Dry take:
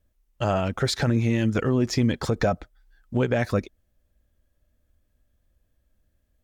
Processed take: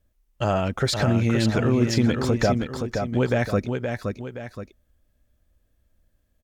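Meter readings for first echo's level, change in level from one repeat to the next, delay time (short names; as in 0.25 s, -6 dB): -5.5 dB, -7.5 dB, 0.521 s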